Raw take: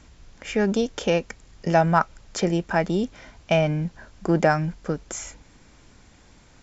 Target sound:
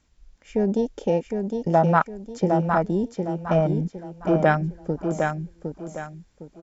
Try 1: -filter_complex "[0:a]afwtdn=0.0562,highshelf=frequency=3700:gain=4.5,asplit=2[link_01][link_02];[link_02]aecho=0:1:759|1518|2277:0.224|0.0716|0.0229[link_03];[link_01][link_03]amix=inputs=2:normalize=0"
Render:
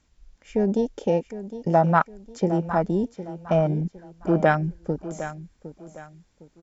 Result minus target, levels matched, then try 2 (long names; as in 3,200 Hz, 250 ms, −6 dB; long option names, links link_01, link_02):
echo-to-direct −8 dB
-filter_complex "[0:a]afwtdn=0.0562,highshelf=frequency=3700:gain=4.5,asplit=2[link_01][link_02];[link_02]aecho=0:1:759|1518|2277|3036:0.562|0.18|0.0576|0.0184[link_03];[link_01][link_03]amix=inputs=2:normalize=0"